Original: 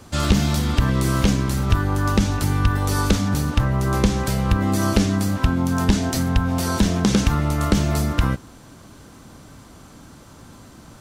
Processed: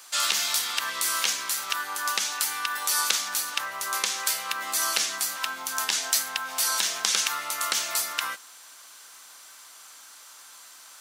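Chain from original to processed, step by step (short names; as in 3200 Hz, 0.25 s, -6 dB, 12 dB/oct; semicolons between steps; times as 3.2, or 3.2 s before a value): HPF 1100 Hz 12 dB/oct; tilt +2.5 dB/oct; gain -1 dB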